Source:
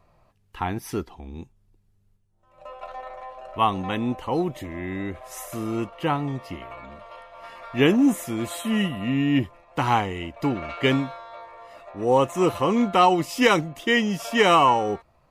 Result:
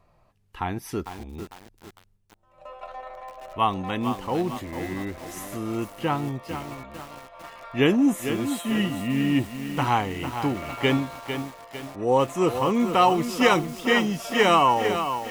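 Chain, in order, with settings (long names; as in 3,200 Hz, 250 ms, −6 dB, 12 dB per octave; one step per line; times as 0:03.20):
feedback echo at a low word length 451 ms, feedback 55%, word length 6 bits, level −8 dB
level −1.5 dB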